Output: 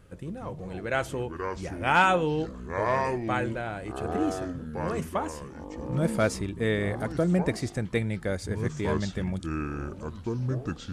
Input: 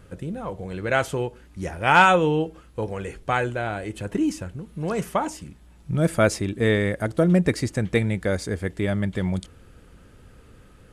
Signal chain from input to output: echoes that change speed 0.101 s, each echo -6 st, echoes 3, each echo -6 dB; gain -6 dB

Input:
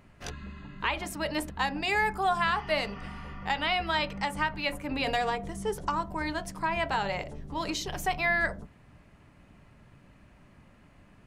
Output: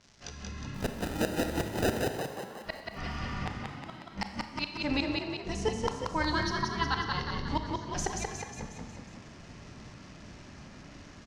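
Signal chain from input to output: dynamic EQ 2600 Hz, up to -3 dB, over -40 dBFS, Q 2.2; AGC gain up to 14 dB; crackle 370/s -38 dBFS; ladder low-pass 6600 Hz, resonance 50%; 0.74–1.93 sample-rate reducer 1100 Hz, jitter 0%; 6.23–7.47 fixed phaser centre 2300 Hz, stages 6; one-sided clip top -17 dBFS, bottom -13.5 dBFS; flipped gate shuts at -18 dBFS, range -32 dB; frequency-shifting echo 0.181 s, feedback 56%, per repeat +34 Hz, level -3 dB; Schroeder reverb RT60 1 s, combs from 28 ms, DRR 7.5 dB

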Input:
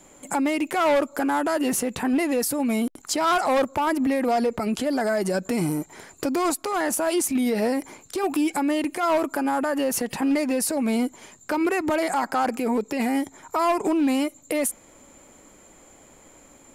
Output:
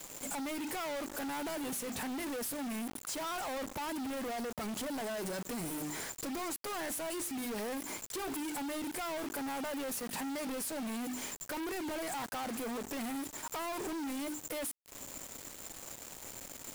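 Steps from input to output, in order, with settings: high shelf 6600 Hz +10 dB; notches 50/100/150/200/250/300/350/400 Hz; compressor 20:1, threshold -29 dBFS, peak gain reduction 15 dB; overloaded stage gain 28 dB; power-law curve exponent 0.5; bit-crush 6-bit; gain -7 dB

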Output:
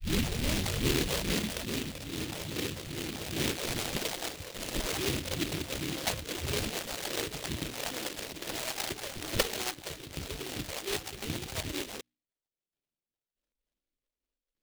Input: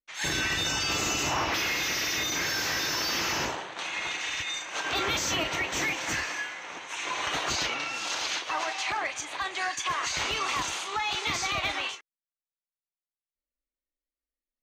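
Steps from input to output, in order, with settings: tape start at the beginning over 2.21 s; treble ducked by the level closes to 340 Hz, closed at -26.5 dBFS; low shelf 130 Hz -5.5 dB; notches 60/120/180/240/300 Hz; in parallel at -3 dB: limiter -32.5 dBFS, peak gain reduction 9 dB; on the sum: LFO low-pass saw down 1.1 Hz 430–2700 Hz; phaser stages 12, 2.4 Hz, lowest notch 260–2000 Hz; sample-rate reducer 1600 Hz, jitter 0%; noise-modulated delay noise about 2900 Hz, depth 0.28 ms; gain +3.5 dB

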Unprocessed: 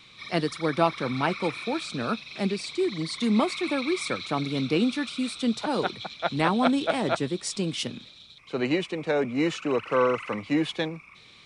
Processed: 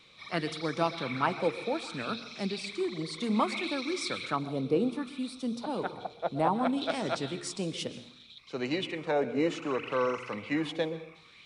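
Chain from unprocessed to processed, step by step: de-hum 117.1 Hz, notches 4; 4.36–6.82 band shelf 3300 Hz -9 dB 2.8 oct; plate-style reverb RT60 0.63 s, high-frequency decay 0.85×, pre-delay 0.11 s, DRR 13.5 dB; LFO bell 0.64 Hz 470–6000 Hz +9 dB; gain -6.5 dB

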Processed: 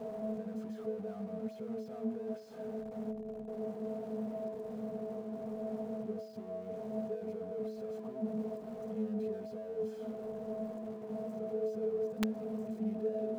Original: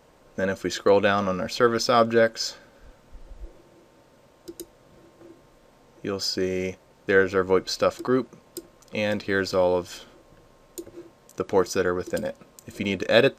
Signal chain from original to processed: infinite clipping; de-hum 217.3 Hz, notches 3; wrapped overs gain 32 dB; gain +7.5 dB

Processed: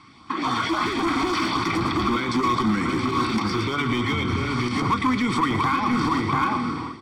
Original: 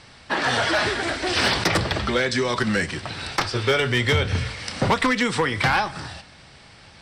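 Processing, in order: LFO notch saw up 3.7 Hz 450–2900 Hz; darkening echo 0.688 s, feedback 18%, low-pass 1600 Hz, level -9.5 dB; compressor 6:1, threshold -30 dBFS, peak gain reduction 12.5 dB; HPF 180 Hz 6 dB/oct; split-band echo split 1800 Hz, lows 0.737 s, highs 0.113 s, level -9.5 dB; AGC gain up to 14.5 dB; limiter -13 dBFS, peak gain reduction 9 dB; high shelf 5000 Hz -10.5 dB; small resonant body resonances 310/1100 Hz, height 13 dB, ringing for 25 ms; overloaded stage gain 13.5 dB; bell 400 Hz -6 dB 0.33 oct; comb 0.9 ms, depth 71%; gain -5 dB

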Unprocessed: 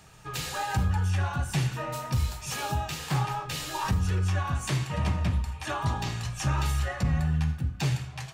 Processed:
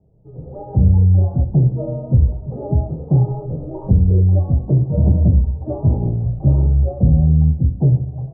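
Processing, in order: steep low-pass 590 Hz 36 dB/oct; 0.8–1.2 dynamic EQ 140 Hz, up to +4 dB, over -41 dBFS, Q 1.2; AGC gain up to 16 dB; gain -1 dB

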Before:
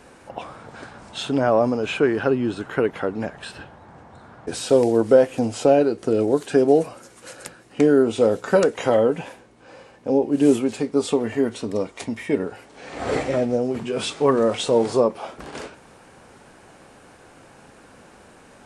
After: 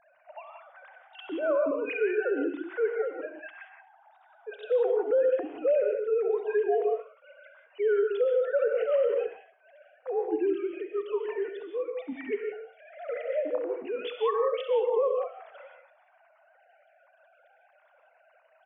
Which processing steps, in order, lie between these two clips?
sine-wave speech; bell 360 Hz -5 dB 0.84 oct; on a send: feedback echo 67 ms, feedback 27%, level -15 dB; on the sum: non-linear reverb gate 0.2 s rising, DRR 4 dB; limiter -13 dBFS, peak gain reduction 10.5 dB; gain -5 dB

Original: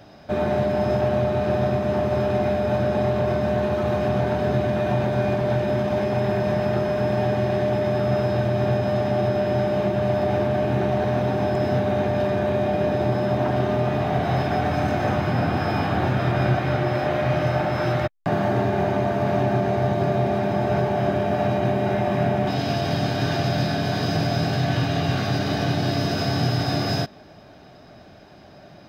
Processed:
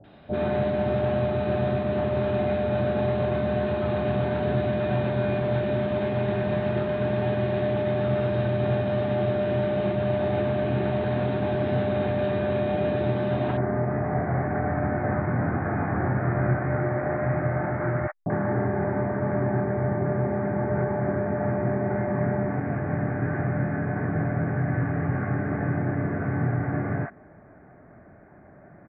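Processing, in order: steep low-pass 4000 Hz 72 dB/oct, from 13.52 s 2100 Hz; bands offset in time lows, highs 40 ms, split 730 Hz; gain -2.5 dB

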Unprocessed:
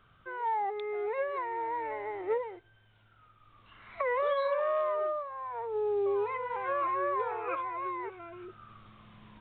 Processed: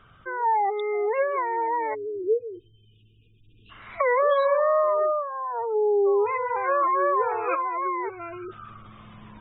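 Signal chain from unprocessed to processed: 1.95–3.7 spectral delete 490–2400 Hz; 8.21–8.7 high shelf 2000 Hz +6.5 dB; spectral gate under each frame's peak -25 dB strong; gain +8.5 dB

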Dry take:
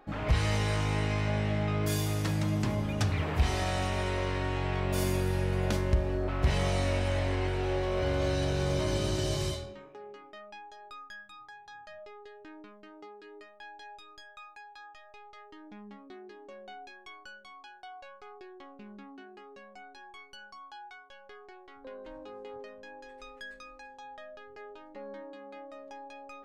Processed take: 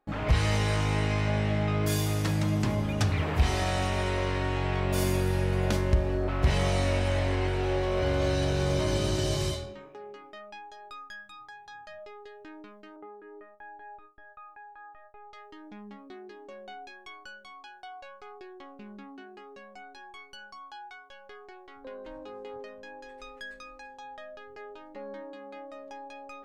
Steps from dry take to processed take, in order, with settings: 12.96–15.33 LPF 1700 Hz 24 dB/oct; gate with hold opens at -45 dBFS; gain +2.5 dB

